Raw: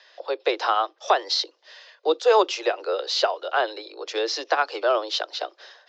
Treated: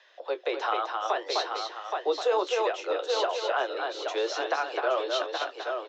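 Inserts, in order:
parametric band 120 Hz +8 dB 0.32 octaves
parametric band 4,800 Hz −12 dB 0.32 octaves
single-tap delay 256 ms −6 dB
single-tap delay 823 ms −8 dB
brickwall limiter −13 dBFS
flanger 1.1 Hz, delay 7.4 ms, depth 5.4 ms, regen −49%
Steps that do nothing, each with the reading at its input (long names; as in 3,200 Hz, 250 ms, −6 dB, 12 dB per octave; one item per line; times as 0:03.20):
parametric band 120 Hz: nothing at its input below 290 Hz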